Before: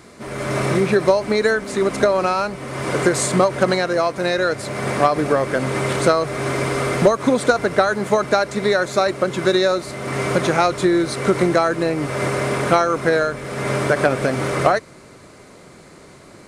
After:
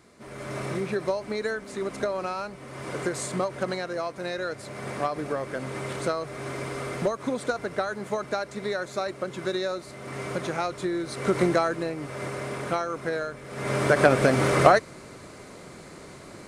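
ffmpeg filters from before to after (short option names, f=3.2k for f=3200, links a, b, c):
-af "volume=6.5dB,afade=t=in:st=11.04:d=0.4:silence=0.446684,afade=t=out:st=11.44:d=0.52:silence=0.446684,afade=t=in:st=13.48:d=0.65:silence=0.266073"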